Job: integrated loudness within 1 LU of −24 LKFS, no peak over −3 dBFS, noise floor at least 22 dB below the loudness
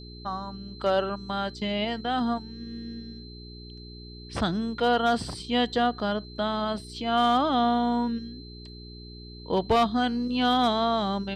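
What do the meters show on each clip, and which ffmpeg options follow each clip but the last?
mains hum 60 Hz; hum harmonics up to 420 Hz; level of the hum −42 dBFS; interfering tone 4,100 Hz; level of the tone −47 dBFS; integrated loudness −26.5 LKFS; sample peak −14.5 dBFS; target loudness −24.0 LKFS
→ -af "bandreject=frequency=60:width_type=h:width=4,bandreject=frequency=120:width_type=h:width=4,bandreject=frequency=180:width_type=h:width=4,bandreject=frequency=240:width_type=h:width=4,bandreject=frequency=300:width_type=h:width=4,bandreject=frequency=360:width_type=h:width=4,bandreject=frequency=420:width_type=h:width=4"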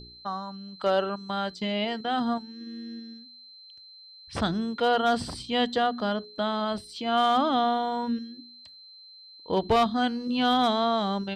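mains hum none found; interfering tone 4,100 Hz; level of the tone −47 dBFS
→ -af "bandreject=frequency=4100:width=30"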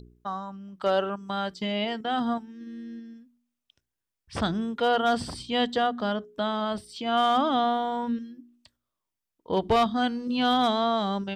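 interfering tone none found; integrated loudness −27.0 LKFS; sample peak −13.5 dBFS; target loudness −24.0 LKFS
→ -af "volume=3dB"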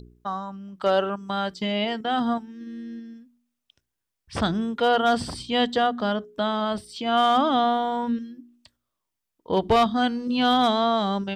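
integrated loudness −24.0 LKFS; sample peak −10.5 dBFS; background noise floor −83 dBFS

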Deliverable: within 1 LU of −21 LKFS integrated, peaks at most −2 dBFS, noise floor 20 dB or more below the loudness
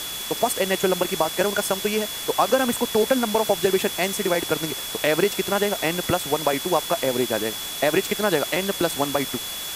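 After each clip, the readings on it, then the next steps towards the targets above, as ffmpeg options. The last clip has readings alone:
interfering tone 3,400 Hz; level of the tone −33 dBFS; background noise floor −32 dBFS; target noise floor −43 dBFS; integrated loudness −22.5 LKFS; sample peak −6.0 dBFS; target loudness −21.0 LKFS
→ -af "bandreject=frequency=3400:width=30"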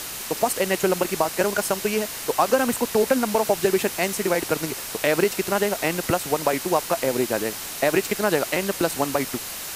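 interfering tone none found; background noise floor −33 dBFS; target noise floor −43 dBFS
→ -af "afftdn=noise_reduction=10:noise_floor=-33"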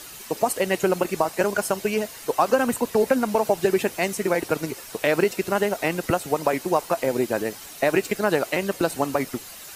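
background noise floor −41 dBFS; target noise floor −44 dBFS
→ -af "afftdn=noise_reduction=6:noise_floor=-41"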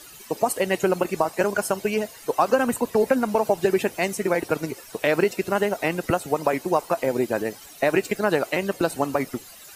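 background noise floor −45 dBFS; integrated loudness −24.0 LKFS; sample peak −7.0 dBFS; target loudness −21.0 LKFS
→ -af "volume=3dB"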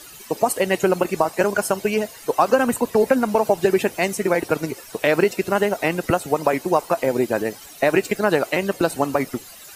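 integrated loudness −21.0 LKFS; sample peak −4.0 dBFS; background noise floor −42 dBFS

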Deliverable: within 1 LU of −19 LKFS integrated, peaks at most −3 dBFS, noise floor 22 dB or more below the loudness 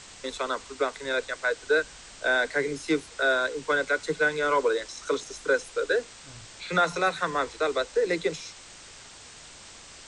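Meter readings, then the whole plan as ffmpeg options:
background noise floor −48 dBFS; target noise floor −49 dBFS; integrated loudness −27.0 LKFS; sample peak −12.5 dBFS; target loudness −19.0 LKFS
→ -af "afftdn=noise_reduction=6:noise_floor=-48"
-af "volume=8dB"

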